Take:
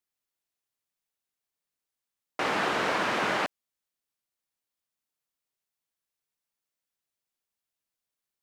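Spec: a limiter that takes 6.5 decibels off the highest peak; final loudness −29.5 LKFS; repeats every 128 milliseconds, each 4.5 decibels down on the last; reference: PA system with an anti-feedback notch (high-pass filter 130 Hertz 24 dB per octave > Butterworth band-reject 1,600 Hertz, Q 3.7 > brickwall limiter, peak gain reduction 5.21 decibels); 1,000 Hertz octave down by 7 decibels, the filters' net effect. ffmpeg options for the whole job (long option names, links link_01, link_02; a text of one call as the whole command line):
ffmpeg -i in.wav -af "equalizer=frequency=1000:width_type=o:gain=-9,alimiter=level_in=0.5dB:limit=-24dB:level=0:latency=1,volume=-0.5dB,highpass=frequency=130:width=0.5412,highpass=frequency=130:width=1.3066,asuperstop=centerf=1600:order=8:qfactor=3.7,aecho=1:1:128|256|384|512|640|768|896|1024|1152:0.596|0.357|0.214|0.129|0.0772|0.0463|0.0278|0.0167|0.01,volume=7dB,alimiter=limit=-20dB:level=0:latency=1" out.wav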